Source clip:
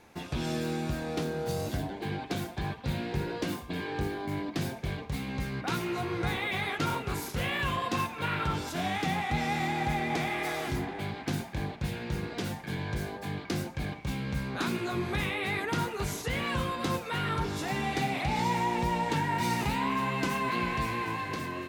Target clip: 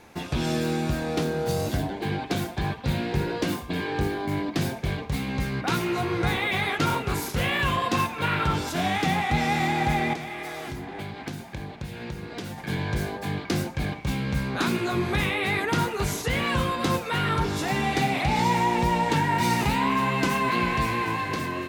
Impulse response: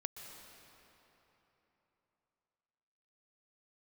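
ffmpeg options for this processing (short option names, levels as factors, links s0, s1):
-filter_complex "[0:a]asettb=1/sr,asplit=3[s0][s1][s2];[s0]atrim=end=10.134[s3];[s1]atrim=start=10.13:end=12.58,asetpts=PTS-STARTPTS,afade=t=in:d=0.004:c=qsin,afade=t=out:st=2.446:d=0.004:c=qsin,acompressor=threshold=0.0126:ratio=6[s4];[s2]atrim=start=12.576[s5];[s3][s4]acrossfade=d=0.004:c1=hsin:c2=qsin[s6];[s6][s5]acrossfade=d=0.004:c1=qsin:c2=hsin,volume=2"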